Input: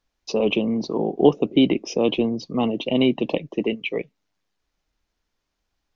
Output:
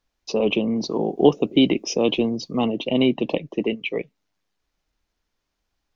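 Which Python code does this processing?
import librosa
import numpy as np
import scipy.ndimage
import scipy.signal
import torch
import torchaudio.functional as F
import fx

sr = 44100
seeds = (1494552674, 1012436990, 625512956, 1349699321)

y = fx.high_shelf(x, sr, hz=fx.line((0.76, 4300.0), (2.64, 5800.0)), db=10.5, at=(0.76, 2.64), fade=0.02)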